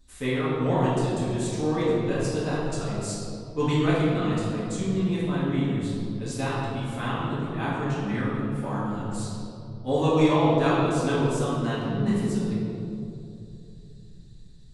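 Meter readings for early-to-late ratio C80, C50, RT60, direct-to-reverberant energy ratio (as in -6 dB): 0.0 dB, -2.5 dB, 2.9 s, -10.0 dB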